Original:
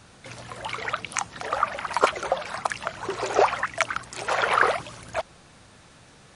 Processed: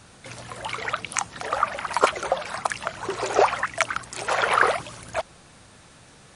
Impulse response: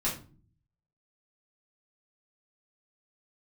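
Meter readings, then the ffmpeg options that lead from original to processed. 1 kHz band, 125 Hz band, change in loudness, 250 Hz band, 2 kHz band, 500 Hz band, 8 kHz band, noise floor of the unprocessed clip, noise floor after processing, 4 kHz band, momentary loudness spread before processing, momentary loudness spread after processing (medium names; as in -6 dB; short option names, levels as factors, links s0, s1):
+1.0 dB, +1.0 dB, +1.0 dB, +1.0 dB, +1.0 dB, +1.0 dB, +3.0 dB, -53 dBFS, -51 dBFS, +1.5 dB, 12 LU, 12 LU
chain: -af "equalizer=f=9400:t=o:w=0.76:g=4,volume=1.12"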